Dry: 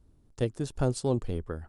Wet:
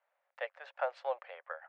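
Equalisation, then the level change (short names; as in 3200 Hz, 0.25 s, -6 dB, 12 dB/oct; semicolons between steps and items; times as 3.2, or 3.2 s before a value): rippled Chebyshev high-pass 530 Hz, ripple 3 dB; ladder low-pass 2500 Hz, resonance 40%; +10.0 dB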